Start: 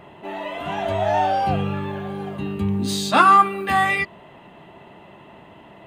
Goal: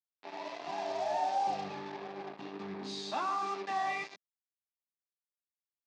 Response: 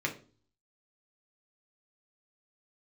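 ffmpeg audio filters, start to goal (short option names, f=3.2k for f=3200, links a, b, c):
-filter_complex "[0:a]equalizer=f=800:w=3:g=4.5,asplit=2[a][b];[b]adelay=122.4,volume=-10dB,highshelf=f=4k:g=-2.76[c];[a][c]amix=inputs=2:normalize=0,alimiter=limit=-11.5dB:level=0:latency=1:release=21,flanger=delay=9:depth=5.8:regen=67:speed=1.9:shape=sinusoidal,asettb=1/sr,asplit=3[d][e][f];[d]atrim=end=1.014[g];[e]atrim=start=1.01:end=1.75,asetpts=PTS-STARTPTS,afade=t=in:d=0.004:c=qsin,afade=t=out:st=0.736:d=0.004:c=qsin,asplit=2[h][i];[i]adelay=32,volume=-10dB[j];[h][j]amix=inputs=2:normalize=0,atrim=end_sample=32634[k];[f]atrim=start=1.746[l];[g][k]acrossfade=d=0.004:c1=hsin:c2=qsin[m];[m][l]acrossfade=d=0.004:c1=qsin:c2=hsin,acrusher=bits=4:mix=0:aa=0.5,acompressor=mode=upward:threshold=-37dB:ratio=2.5,highpass=f=210:w=0.5412,highpass=f=210:w=1.3066,equalizer=f=220:t=q:w=4:g=-9,equalizer=f=510:t=q:w=4:g=-5,equalizer=f=1.4k:t=q:w=4:g=-7,equalizer=f=2k:t=q:w=4:g=-3,equalizer=f=3k:t=q:w=4:g=-6,lowpass=f=5.6k:w=0.5412,lowpass=f=5.6k:w=1.3066,volume=-8.5dB"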